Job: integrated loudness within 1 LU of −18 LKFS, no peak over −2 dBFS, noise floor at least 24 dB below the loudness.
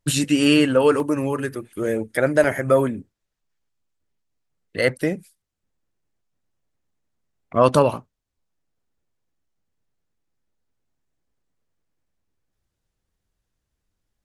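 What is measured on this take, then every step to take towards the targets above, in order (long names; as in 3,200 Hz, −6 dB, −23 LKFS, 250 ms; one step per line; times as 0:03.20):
number of dropouts 3; longest dropout 1.2 ms; integrated loudness −20.0 LKFS; sample peak −2.5 dBFS; target loudness −18.0 LKFS
→ repair the gap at 0:01.00/0:01.86/0:02.44, 1.2 ms
level +2 dB
brickwall limiter −2 dBFS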